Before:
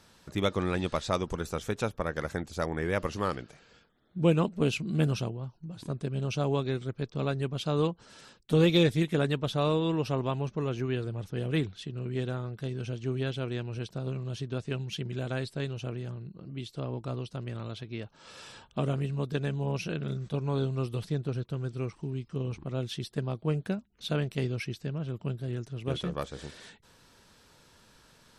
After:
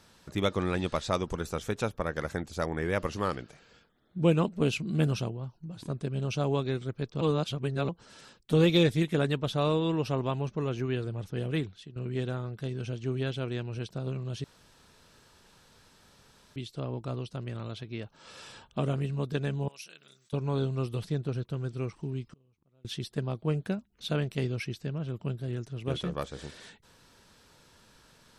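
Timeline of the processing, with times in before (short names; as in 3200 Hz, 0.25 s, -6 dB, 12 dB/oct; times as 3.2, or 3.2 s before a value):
7.21–7.89 reverse
11.41–11.96 fade out, to -11 dB
14.44–16.56 room tone
19.68–20.33 differentiator
22.26–22.85 flipped gate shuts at -36 dBFS, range -34 dB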